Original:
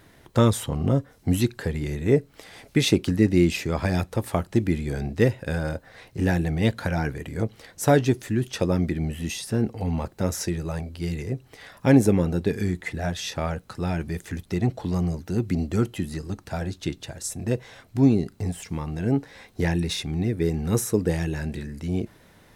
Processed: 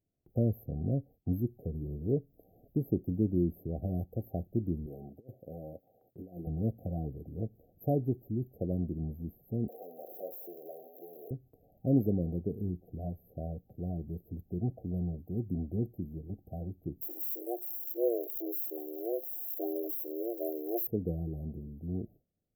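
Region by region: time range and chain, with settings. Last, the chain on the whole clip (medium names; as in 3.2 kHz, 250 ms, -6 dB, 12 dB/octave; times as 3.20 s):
4.86–6.47 s: high-pass 560 Hz 6 dB/octave + compressor with a negative ratio -32 dBFS, ratio -0.5
9.68–11.31 s: jump at every zero crossing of -24.5 dBFS + high-pass 450 Hz 24 dB/octave + doubling 39 ms -12 dB
17.01–20.87 s: zero-crossing glitches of -18 dBFS + frequency shift +230 Hz
whole clip: FFT band-reject 780–12000 Hz; gate with hold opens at -44 dBFS; peaking EQ 870 Hz -5.5 dB 2.4 oct; trim -8.5 dB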